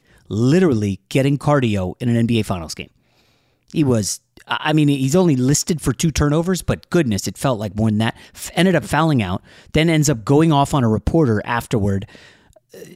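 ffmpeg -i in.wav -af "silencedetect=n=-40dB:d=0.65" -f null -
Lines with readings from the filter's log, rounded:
silence_start: 2.87
silence_end: 3.70 | silence_duration: 0.83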